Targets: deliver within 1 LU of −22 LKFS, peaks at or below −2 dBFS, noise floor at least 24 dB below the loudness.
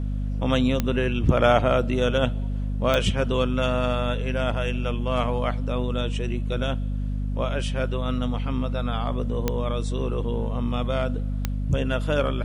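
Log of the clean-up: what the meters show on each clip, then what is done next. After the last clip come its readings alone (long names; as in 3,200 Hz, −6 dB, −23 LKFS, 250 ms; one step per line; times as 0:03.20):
number of clicks 4; mains hum 50 Hz; hum harmonics up to 250 Hz; level of the hum −24 dBFS; integrated loudness −25.0 LKFS; sample peak −4.5 dBFS; target loudness −22.0 LKFS
→ click removal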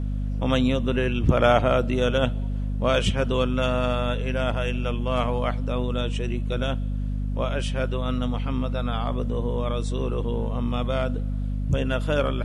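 number of clicks 0; mains hum 50 Hz; hum harmonics up to 250 Hz; level of the hum −24 dBFS
→ mains-hum notches 50/100/150/200/250 Hz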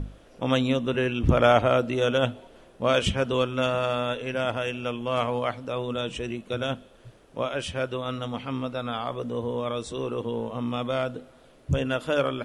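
mains hum none found; integrated loudness −27.0 LKFS; sample peak −5.5 dBFS; target loudness −22.0 LKFS
→ level +5 dB
brickwall limiter −2 dBFS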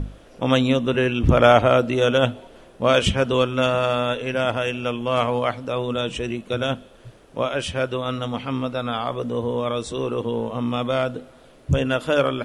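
integrated loudness −22.0 LKFS; sample peak −2.0 dBFS; background noise floor −49 dBFS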